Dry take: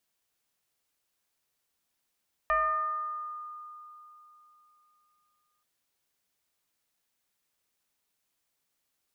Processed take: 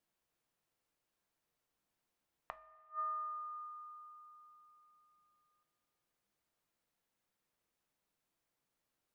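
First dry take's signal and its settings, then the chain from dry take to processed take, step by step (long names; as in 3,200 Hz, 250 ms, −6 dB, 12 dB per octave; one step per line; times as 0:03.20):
two-operator FM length 3.13 s, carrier 1,220 Hz, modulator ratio 0.48, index 0.98, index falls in 1.78 s exponential, decay 3.39 s, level −22 dB
gate with flip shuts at −28 dBFS, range −31 dB
high-shelf EQ 2,000 Hz −10.5 dB
coupled-rooms reverb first 0.28 s, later 2.9 s, from −18 dB, DRR 11 dB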